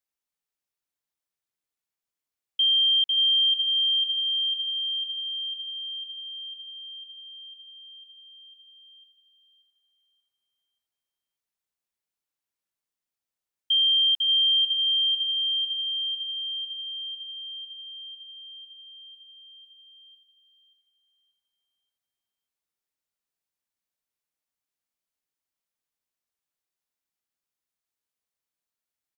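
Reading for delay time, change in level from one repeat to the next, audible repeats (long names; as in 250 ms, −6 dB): 582 ms, −9.0 dB, 3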